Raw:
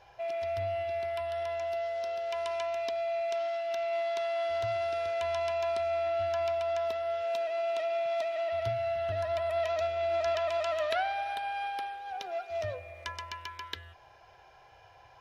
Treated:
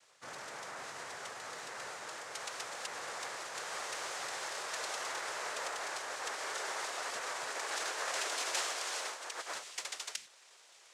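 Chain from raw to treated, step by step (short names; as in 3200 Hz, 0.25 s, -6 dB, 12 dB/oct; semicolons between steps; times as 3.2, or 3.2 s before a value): speed glide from 88% -> 190%; differentiator; noise vocoder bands 3; gain +7 dB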